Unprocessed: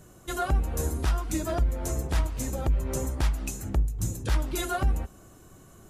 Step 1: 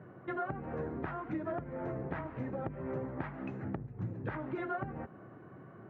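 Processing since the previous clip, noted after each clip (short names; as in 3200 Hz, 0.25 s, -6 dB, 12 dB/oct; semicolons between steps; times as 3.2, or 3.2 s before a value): elliptic band-pass 120–1900 Hz, stop band 60 dB; compressor 3:1, threshold -39 dBFS, peak gain reduction 10.5 dB; gain +2.5 dB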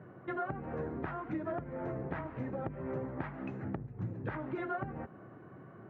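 nothing audible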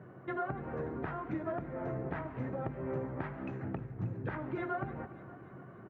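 feedback echo 0.292 s, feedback 58%, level -15 dB; reverb RT60 1.1 s, pre-delay 4 ms, DRR 14.5 dB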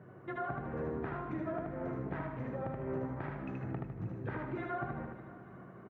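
feedback echo 77 ms, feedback 40%, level -3 dB; gain -3 dB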